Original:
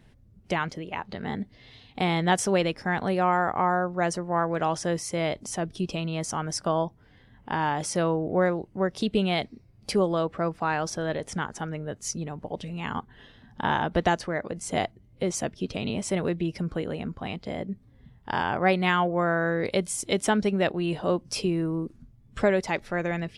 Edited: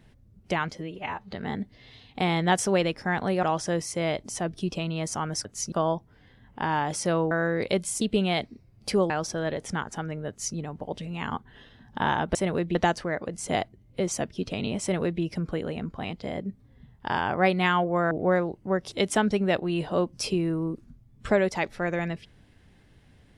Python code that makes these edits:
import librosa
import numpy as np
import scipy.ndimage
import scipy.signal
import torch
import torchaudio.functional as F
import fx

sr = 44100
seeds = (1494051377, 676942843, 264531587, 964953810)

y = fx.edit(x, sr, fx.stretch_span(start_s=0.72, length_s=0.4, factor=1.5),
    fx.cut(start_s=3.23, length_s=1.37),
    fx.swap(start_s=8.21, length_s=0.81, other_s=19.34, other_length_s=0.7),
    fx.cut(start_s=10.11, length_s=0.62),
    fx.duplicate(start_s=11.92, length_s=0.27, to_s=6.62),
    fx.duplicate(start_s=16.05, length_s=0.4, to_s=13.98), tone=tone)